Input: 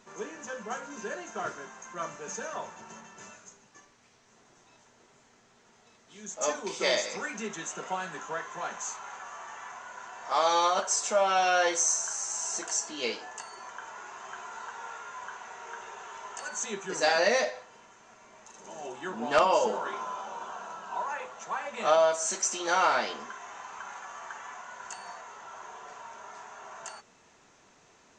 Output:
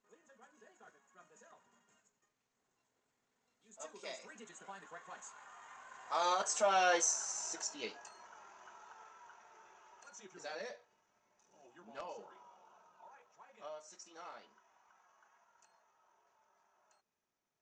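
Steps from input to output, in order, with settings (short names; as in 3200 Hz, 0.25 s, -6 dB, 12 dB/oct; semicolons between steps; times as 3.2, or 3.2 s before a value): Doppler pass-by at 11.02, 18 m/s, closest 19 m; tempo 1.6×; gain -5 dB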